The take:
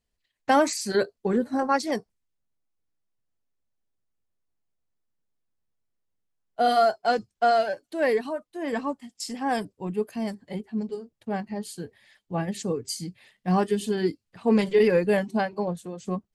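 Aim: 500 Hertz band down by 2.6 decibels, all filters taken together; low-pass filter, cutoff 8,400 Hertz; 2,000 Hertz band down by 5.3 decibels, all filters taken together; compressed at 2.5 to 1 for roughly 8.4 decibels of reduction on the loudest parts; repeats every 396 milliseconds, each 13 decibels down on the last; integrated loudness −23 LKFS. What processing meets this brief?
low-pass filter 8,400 Hz
parametric band 500 Hz −3 dB
parametric band 2,000 Hz −7 dB
downward compressor 2.5 to 1, threshold −31 dBFS
repeating echo 396 ms, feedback 22%, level −13 dB
level +11.5 dB

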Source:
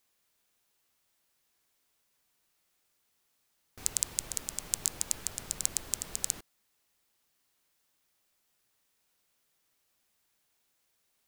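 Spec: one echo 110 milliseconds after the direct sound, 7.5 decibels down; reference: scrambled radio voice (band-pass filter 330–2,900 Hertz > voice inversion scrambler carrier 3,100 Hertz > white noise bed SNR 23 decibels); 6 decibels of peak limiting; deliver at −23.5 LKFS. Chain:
brickwall limiter −7.5 dBFS
band-pass filter 330–2,900 Hz
single-tap delay 110 ms −7.5 dB
voice inversion scrambler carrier 3,100 Hz
white noise bed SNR 23 dB
level +27.5 dB

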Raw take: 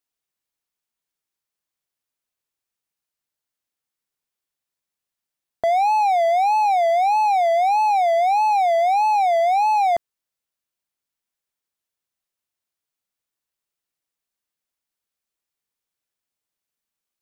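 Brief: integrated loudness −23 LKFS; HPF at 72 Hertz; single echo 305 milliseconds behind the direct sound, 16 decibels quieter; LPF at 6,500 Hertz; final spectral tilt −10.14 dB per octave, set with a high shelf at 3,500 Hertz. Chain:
high-pass filter 72 Hz
low-pass filter 6,500 Hz
high-shelf EQ 3,500 Hz +6.5 dB
single-tap delay 305 ms −16 dB
level −5.5 dB

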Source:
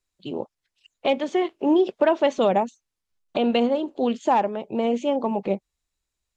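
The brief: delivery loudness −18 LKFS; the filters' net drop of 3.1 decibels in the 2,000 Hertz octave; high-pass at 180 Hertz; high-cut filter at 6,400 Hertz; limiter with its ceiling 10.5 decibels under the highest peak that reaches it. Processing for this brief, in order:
high-pass filter 180 Hz
low-pass filter 6,400 Hz
parametric band 2,000 Hz −4 dB
level +11.5 dB
brickwall limiter −7.5 dBFS

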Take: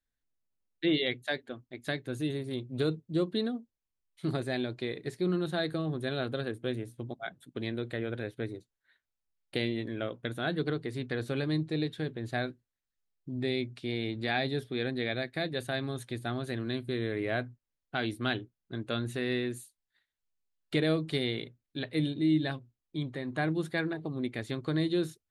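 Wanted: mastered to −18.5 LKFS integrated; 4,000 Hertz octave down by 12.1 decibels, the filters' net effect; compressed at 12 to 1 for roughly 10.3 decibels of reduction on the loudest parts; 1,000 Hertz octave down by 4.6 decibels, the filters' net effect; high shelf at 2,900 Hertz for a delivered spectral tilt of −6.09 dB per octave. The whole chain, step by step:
parametric band 1,000 Hz −6 dB
high-shelf EQ 2,900 Hz −9 dB
parametric band 4,000 Hz −7.5 dB
downward compressor 12 to 1, threshold −34 dBFS
level +22 dB

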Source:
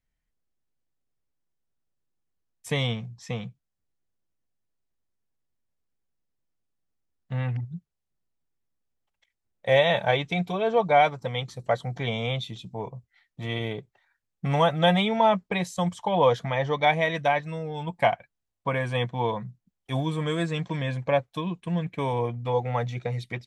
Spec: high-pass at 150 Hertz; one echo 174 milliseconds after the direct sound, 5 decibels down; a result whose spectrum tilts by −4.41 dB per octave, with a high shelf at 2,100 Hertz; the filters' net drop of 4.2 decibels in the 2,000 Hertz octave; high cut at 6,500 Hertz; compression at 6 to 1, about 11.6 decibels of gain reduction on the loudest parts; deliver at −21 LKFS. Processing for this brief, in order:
high-pass filter 150 Hz
low-pass filter 6,500 Hz
parametric band 2,000 Hz −8.5 dB
high-shelf EQ 2,100 Hz +6 dB
downward compressor 6 to 1, threshold −28 dBFS
single-tap delay 174 ms −5 dB
level +12 dB

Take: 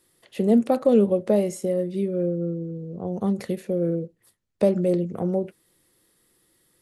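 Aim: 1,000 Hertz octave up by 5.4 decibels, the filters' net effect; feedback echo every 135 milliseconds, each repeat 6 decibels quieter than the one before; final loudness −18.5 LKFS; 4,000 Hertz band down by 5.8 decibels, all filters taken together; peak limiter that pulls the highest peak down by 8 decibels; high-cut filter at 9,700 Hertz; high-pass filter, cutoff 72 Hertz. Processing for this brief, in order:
high-pass filter 72 Hz
low-pass filter 9,700 Hz
parametric band 1,000 Hz +8.5 dB
parametric band 4,000 Hz −8.5 dB
brickwall limiter −14 dBFS
repeating echo 135 ms, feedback 50%, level −6 dB
level +6 dB

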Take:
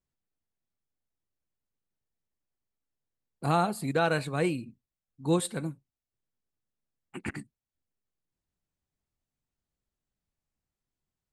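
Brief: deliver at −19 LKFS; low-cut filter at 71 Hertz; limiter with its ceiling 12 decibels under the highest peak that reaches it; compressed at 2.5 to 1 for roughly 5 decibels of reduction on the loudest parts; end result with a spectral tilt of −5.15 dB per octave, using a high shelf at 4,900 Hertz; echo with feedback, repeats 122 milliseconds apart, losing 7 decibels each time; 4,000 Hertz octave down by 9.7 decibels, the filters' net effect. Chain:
high-pass filter 71 Hz
parametric band 4,000 Hz −8 dB
high-shelf EQ 4,900 Hz −8.5 dB
downward compressor 2.5 to 1, threshold −28 dBFS
brickwall limiter −30 dBFS
repeating echo 122 ms, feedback 45%, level −7 dB
level +21.5 dB

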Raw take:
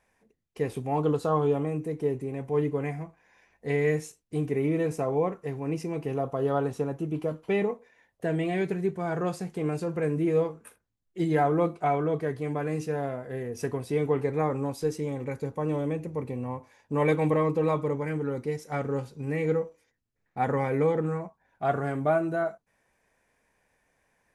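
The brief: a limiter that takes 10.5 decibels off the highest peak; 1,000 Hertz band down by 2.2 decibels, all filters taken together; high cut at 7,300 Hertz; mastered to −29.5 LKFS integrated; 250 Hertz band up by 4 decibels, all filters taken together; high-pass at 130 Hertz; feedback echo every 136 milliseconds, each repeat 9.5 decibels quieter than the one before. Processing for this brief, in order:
high-pass filter 130 Hz
low-pass filter 7,300 Hz
parametric band 250 Hz +6.5 dB
parametric band 1,000 Hz −4 dB
brickwall limiter −22 dBFS
repeating echo 136 ms, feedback 33%, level −9.5 dB
level +1.5 dB

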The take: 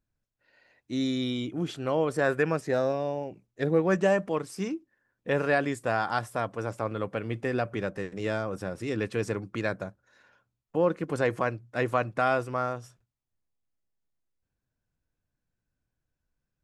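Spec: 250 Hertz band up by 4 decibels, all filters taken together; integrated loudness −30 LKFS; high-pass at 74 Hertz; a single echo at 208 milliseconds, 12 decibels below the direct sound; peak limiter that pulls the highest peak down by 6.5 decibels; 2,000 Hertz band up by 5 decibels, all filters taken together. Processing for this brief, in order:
high-pass filter 74 Hz
parametric band 250 Hz +5 dB
parametric band 2,000 Hz +6.5 dB
brickwall limiter −14.5 dBFS
single-tap delay 208 ms −12 dB
level −2 dB

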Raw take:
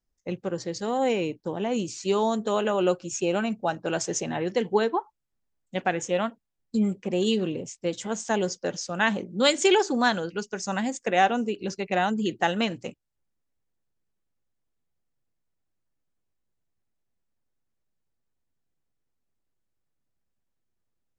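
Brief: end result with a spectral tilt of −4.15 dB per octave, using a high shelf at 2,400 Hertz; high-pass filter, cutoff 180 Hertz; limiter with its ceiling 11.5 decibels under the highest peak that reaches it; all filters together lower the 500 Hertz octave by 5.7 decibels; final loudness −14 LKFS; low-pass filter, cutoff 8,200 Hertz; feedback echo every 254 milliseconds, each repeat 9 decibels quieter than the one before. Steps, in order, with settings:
high-pass filter 180 Hz
low-pass filter 8,200 Hz
parametric band 500 Hz −7 dB
high-shelf EQ 2,400 Hz −3 dB
brickwall limiter −21 dBFS
repeating echo 254 ms, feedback 35%, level −9 dB
level +18.5 dB

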